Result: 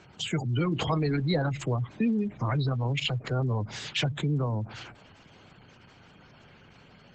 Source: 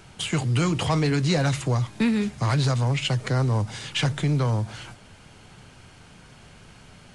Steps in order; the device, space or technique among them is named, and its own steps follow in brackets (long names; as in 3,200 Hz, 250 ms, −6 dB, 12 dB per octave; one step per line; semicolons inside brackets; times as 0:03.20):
0:02.84–0:04.13: noise gate with hold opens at −34 dBFS
noise-suppressed video call (high-pass filter 120 Hz 6 dB per octave; gate on every frequency bin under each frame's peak −20 dB strong; level −2.5 dB; Opus 12 kbit/s 48,000 Hz)